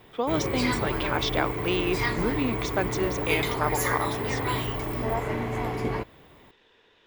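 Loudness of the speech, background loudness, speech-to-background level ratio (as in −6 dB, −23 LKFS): −29.5 LKFS, −28.5 LKFS, −1.0 dB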